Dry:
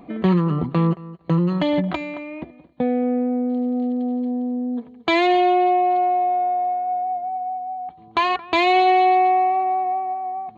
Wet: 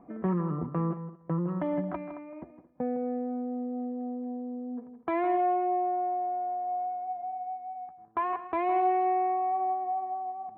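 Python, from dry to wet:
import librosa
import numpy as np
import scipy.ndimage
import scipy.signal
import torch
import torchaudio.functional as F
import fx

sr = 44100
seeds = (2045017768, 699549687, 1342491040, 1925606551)

y = fx.law_mismatch(x, sr, coded='A', at=(6.76, 9.3))
y = scipy.signal.sosfilt(scipy.signal.butter(4, 1600.0, 'lowpass', fs=sr, output='sos'), y)
y = fx.low_shelf(y, sr, hz=360.0, db=-3.5)
y = y + 10.0 ** (-12.0 / 20.0) * np.pad(y, (int(160 * sr / 1000.0), 0))[:len(y)]
y = y * 10.0 ** (-8.5 / 20.0)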